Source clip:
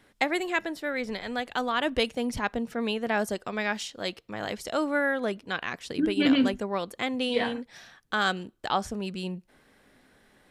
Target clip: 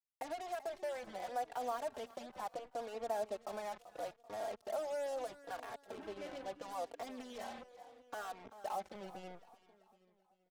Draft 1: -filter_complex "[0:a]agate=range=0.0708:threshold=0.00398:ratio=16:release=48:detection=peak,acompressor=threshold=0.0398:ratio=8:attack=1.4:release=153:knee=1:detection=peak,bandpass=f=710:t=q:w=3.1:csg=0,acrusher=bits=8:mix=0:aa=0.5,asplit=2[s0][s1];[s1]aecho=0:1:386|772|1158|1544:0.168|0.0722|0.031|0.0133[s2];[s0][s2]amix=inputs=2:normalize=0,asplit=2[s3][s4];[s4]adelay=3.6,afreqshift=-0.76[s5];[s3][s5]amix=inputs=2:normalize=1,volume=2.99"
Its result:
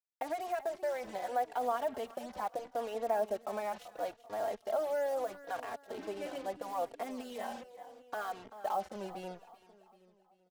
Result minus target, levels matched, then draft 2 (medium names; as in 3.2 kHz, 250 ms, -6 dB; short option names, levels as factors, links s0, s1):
compression: peak gain reduction -6 dB
-filter_complex "[0:a]agate=range=0.0708:threshold=0.00398:ratio=16:release=48:detection=peak,acompressor=threshold=0.0178:ratio=8:attack=1.4:release=153:knee=1:detection=peak,bandpass=f=710:t=q:w=3.1:csg=0,acrusher=bits=8:mix=0:aa=0.5,asplit=2[s0][s1];[s1]aecho=0:1:386|772|1158|1544:0.168|0.0722|0.031|0.0133[s2];[s0][s2]amix=inputs=2:normalize=0,asplit=2[s3][s4];[s4]adelay=3.6,afreqshift=-0.76[s5];[s3][s5]amix=inputs=2:normalize=1,volume=2.99"